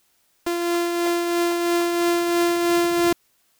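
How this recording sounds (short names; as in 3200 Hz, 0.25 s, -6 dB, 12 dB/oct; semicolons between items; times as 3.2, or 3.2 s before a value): a buzz of ramps at a fixed pitch in blocks of 128 samples; tremolo triangle 3 Hz, depth 40%; a quantiser's noise floor 12-bit, dither triangular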